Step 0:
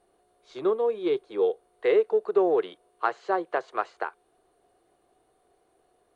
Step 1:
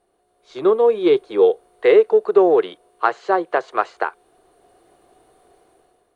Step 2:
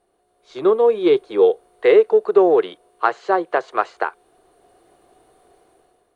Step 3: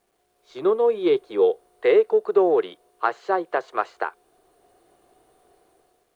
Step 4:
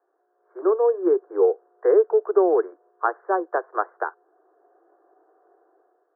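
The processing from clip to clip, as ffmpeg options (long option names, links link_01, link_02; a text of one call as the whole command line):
ffmpeg -i in.wav -af "dynaudnorm=framelen=170:gausssize=7:maxgain=12dB" out.wav
ffmpeg -i in.wav -af anull out.wav
ffmpeg -i in.wav -af "acrusher=bits=10:mix=0:aa=0.000001,volume=-4.5dB" out.wav
ffmpeg -i in.wav -af "asuperpass=centerf=720:order=20:qfactor=0.52" out.wav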